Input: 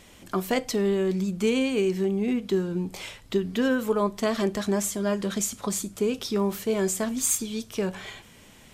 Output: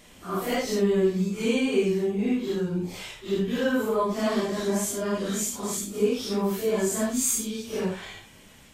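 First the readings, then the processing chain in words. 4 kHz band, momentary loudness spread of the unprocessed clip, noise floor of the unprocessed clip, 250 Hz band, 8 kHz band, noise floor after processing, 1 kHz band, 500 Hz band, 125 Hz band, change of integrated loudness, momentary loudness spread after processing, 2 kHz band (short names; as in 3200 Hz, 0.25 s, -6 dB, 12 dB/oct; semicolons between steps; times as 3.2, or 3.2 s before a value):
0.0 dB, 7 LU, -52 dBFS, 0.0 dB, 0.0 dB, -52 dBFS, +0.5 dB, +0.5 dB, 0.0 dB, 0.0 dB, 8 LU, 0.0 dB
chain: phase scrambler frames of 0.2 s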